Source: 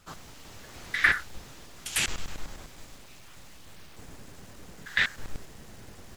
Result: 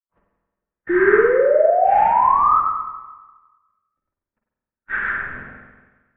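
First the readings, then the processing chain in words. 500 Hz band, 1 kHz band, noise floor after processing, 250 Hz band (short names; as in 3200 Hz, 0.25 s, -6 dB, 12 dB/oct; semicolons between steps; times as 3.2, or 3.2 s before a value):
+32.5 dB, +26.0 dB, under -85 dBFS, +20.0 dB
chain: phase scrambler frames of 0.2 s; notches 50/100/150/200/250/300 Hz; gate -39 dBFS, range -55 dB; low shelf 93 Hz +9.5 dB; AGC gain up to 16 dB; limiter -10 dBFS, peak gain reduction 8.5 dB; rotary speaker horn 0.6 Hz, later 7 Hz, at 3.08; painted sound rise, 0.89–2.6, 520–1500 Hz -16 dBFS; mistuned SSB -180 Hz 170–2200 Hz; spring tank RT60 1.3 s, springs 45/50 ms, chirp 75 ms, DRR -0.5 dB; gain -2 dB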